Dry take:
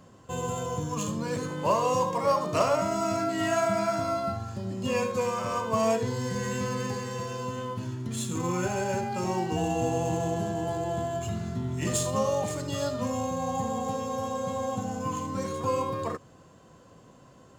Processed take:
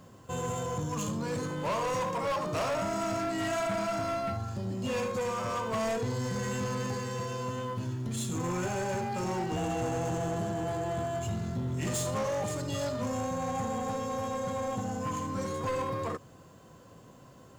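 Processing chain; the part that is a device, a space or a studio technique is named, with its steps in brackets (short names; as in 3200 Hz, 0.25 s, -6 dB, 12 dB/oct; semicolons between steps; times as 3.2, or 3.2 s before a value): open-reel tape (soft clip -27.5 dBFS, distortion -10 dB; bell 110 Hz +2 dB; white noise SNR 41 dB)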